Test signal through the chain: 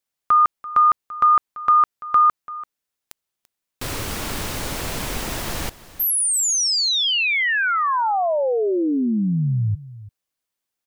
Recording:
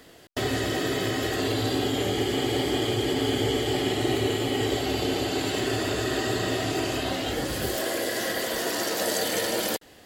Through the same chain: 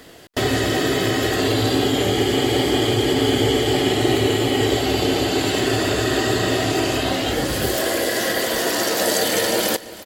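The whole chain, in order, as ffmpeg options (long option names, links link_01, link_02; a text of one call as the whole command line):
ffmpeg -i in.wav -af "aecho=1:1:338:0.133,volume=7dB" out.wav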